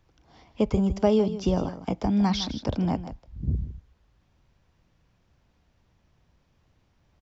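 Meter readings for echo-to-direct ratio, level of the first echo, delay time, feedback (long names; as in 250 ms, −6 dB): −13.0 dB, −13.0 dB, 158 ms, repeats not evenly spaced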